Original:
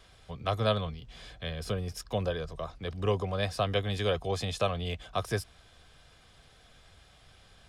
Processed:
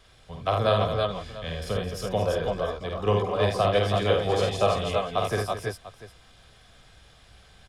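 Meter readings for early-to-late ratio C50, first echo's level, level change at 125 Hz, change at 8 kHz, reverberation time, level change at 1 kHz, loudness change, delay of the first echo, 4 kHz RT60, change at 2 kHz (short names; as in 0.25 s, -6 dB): none, -3.5 dB, +4.0 dB, +4.0 dB, none, +8.5 dB, +6.5 dB, 49 ms, none, +5.5 dB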